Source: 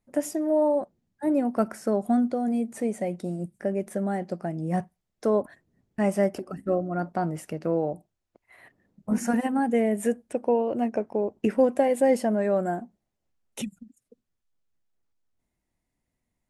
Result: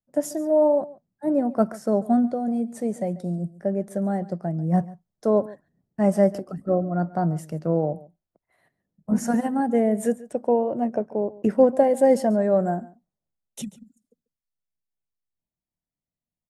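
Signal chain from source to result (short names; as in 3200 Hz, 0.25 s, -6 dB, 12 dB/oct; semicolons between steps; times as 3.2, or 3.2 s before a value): fifteen-band EQ 160 Hz +8 dB, 630 Hz +4 dB, 2500 Hz -9 dB, 10000 Hz -3 dB; on a send: echo 0.141 s -18 dB; on the sum: three-band expander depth 40%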